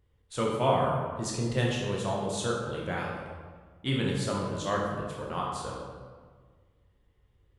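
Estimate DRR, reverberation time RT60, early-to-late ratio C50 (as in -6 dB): -3.0 dB, 1.6 s, 1.0 dB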